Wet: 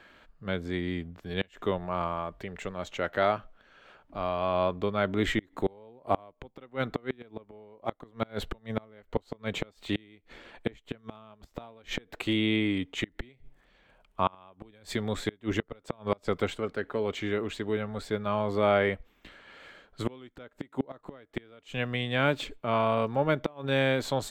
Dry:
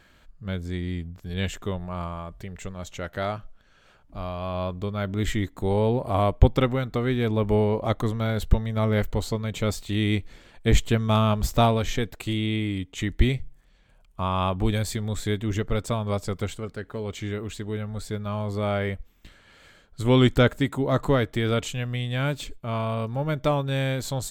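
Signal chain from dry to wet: flipped gate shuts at -15 dBFS, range -31 dB; three-band isolator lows -13 dB, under 230 Hz, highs -13 dB, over 3800 Hz; gain +4 dB

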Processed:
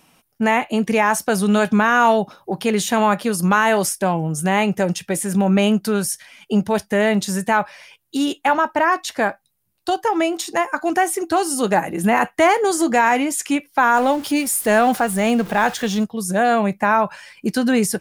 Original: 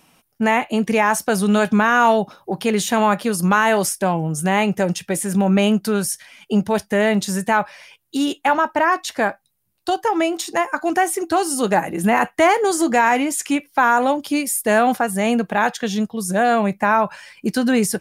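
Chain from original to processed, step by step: 13.94–16.04 zero-crossing step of -30 dBFS

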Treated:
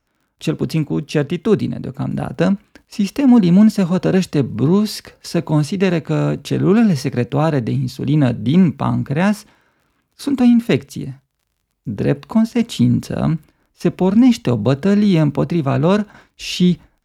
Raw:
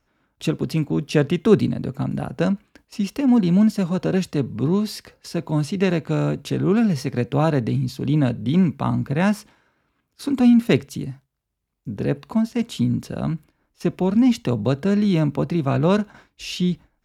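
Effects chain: AGC gain up to 10 dB; crackle 32/s -45 dBFS; gain -1 dB

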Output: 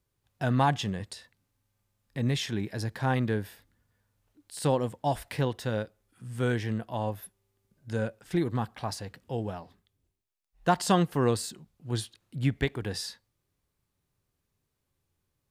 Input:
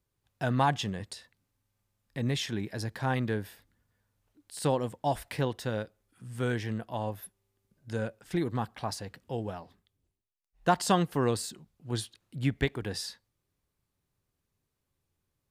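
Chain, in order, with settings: harmonic-percussive split harmonic +3 dB

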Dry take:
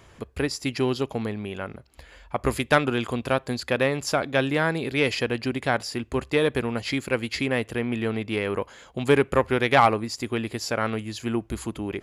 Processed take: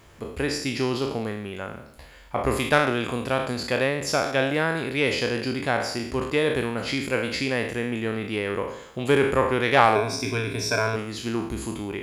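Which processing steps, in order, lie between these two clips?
spectral trails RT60 0.72 s; 9.95–10.96 ripple EQ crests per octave 1.6, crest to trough 15 dB; added noise pink -61 dBFS; gain -2 dB

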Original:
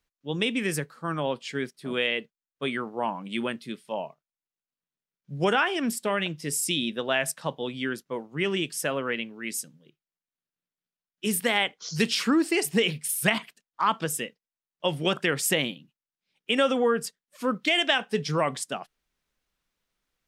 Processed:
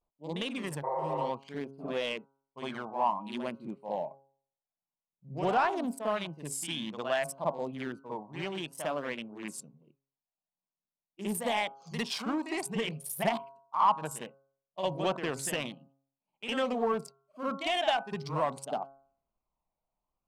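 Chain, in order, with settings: Wiener smoothing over 25 samples; low shelf 170 Hz -3.5 dB; on a send: reverse echo 55 ms -9.5 dB; on the sum: vibrato 0.7 Hz 90 cents; phaser 0.53 Hz, delay 1.4 ms, feedback 35%; de-hum 136.6 Hz, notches 11; in parallel at -3 dB: compressor, threshold -33 dBFS, peak gain reduction 15.5 dB; on the sum: spectral repair 0.87–1.27, 330–2200 Hz after; soft clip -13.5 dBFS, distortion -18 dB; band shelf 810 Hz +9 dB 1.1 oct; gain -9 dB

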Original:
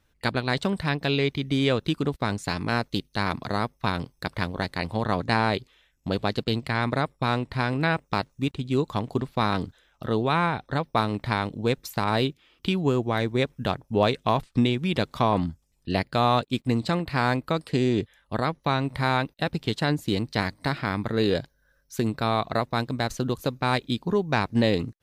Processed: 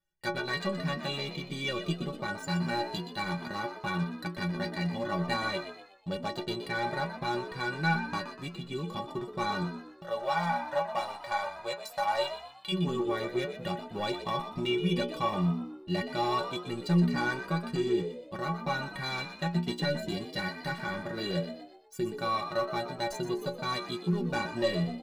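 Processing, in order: 10.04–12.72 resonant low shelf 430 Hz -12.5 dB, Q 3; sample leveller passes 2; metallic resonator 170 Hz, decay 0.36 s, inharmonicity 0.03; frequency-shifting echo 0.122 s, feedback 42%, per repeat +67 Hz, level -10.5 dB

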